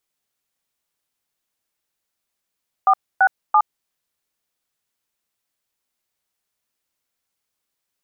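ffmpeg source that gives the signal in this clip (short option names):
-f lavfi -i "aevalsrc='0.224*clip(min(mod(t,0.336),0.066-mod(t,0.336))/0.002,0,1)*(eq(floor(t/0.336),0)*(sin(2*PI*770*mod(t,0.336))+sin(2*PI*1209*mod(t,0.336)))+eq(floor(t/0.336),1)*(sin(2*PI*770*mod(t,0.336))+sin(2*PI*1477*mod(t,0.336)))+eq(floor(t/0.336),2)*(sin(2*PI*852*mod(t,0.336))+sin(2*PI*1209*mod(t,0.336))))':d=1.008:s=44100"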